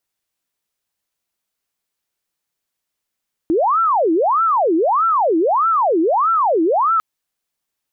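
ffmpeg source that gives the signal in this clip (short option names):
-f lavfi -i "aevalsrc='0.237*sin(2*PI*(834*t-516/(2*PI*1.6)*sin(2*PI*1.6*t)))':d=3.5:s=44100"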